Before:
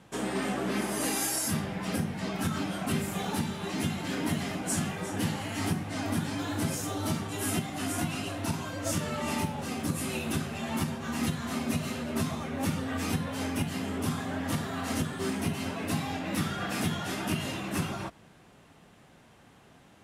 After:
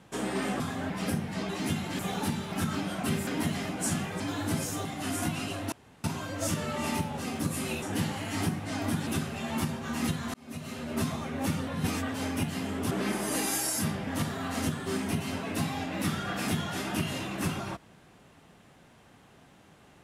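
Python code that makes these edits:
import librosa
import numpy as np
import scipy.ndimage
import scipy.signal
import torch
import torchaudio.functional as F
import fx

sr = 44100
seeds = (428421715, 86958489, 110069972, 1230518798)

y = fx.edit(x, sr, fx.swap(start_s=0.6, length_s=1.16, other_s=14.1, other_length_s=0.3),
    fx.swap(start_s=2.35, length_s=0.75, other_s=3.63, other_length_s=0.5),
    fx.move(start_s=5.06, length_s=1.25, to_s=10.26),
    fx.cut(start_s=6.96, length_s=0.65),
    fx.insert_room_tone(at_s=8.48, length_s=0.32),
    fx.fade_in_span(start_s=11.53, length_s=0.65),
    fx.reverse_span(start_s=12.86, length_s=0.47), tone=tone)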